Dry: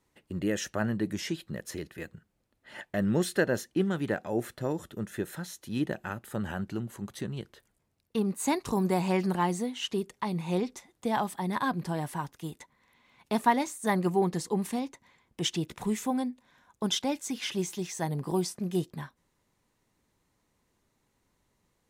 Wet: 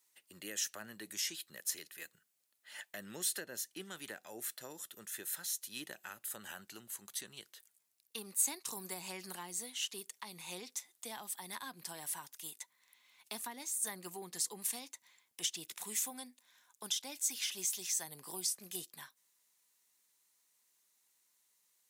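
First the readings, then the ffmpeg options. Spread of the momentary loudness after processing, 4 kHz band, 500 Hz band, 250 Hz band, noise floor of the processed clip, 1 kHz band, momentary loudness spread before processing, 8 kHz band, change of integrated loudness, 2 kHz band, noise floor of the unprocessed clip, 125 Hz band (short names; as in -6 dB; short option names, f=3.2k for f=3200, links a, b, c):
14 LU, -4.0 dB, -20.0 dB, -23.0 dB, -78 dBFS, -18.0 dB, 13 LU, +4.0 dB, -8.0 dB, -10.0 dB, -76 dBFS, -26.0 dB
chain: -filter_complex "[0:a]acrossover=split=390[a][b];[b]acompressor=threshold=-34dB:ratio=10[c];[a][c]amix=inputs=2:normalize=0,aderivative,volume=6.5dB"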